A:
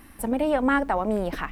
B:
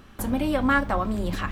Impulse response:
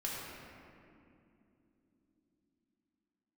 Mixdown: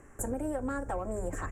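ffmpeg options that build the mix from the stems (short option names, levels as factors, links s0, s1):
-filter_complex "[0:a]lowpass=f=2300:w=0.5412,lowpass=f=2300:w=1.3066,alimiter=limit=0.178:level=0:latency=1:release=443,asplit=2[s0][s1];[s1]highpass=f=720:p=1,volume=3.55,asoftclip=type=tanh:threshold=0.178[s2];[s0][s2]amix=inputs=2:normalize=0,lowpass=f=1100:p=1,volume=0.501,volume=0.398[s3];[1:a]firequalizer=gain_entry='entry(130,0);entry(190,-12);entry(420,6);entry(1000,-13);entry(1600,-2);entry(2400,-30);entry(4000,-28);entry(7200,13);entry(13000,-5)':delay=0.05:min_phase=1,adelay=0.3,volume=0.562[s4];[s3][s4]amix=inputs=2:normalize=0,acompressor=threshold=0.0316:ratio=6"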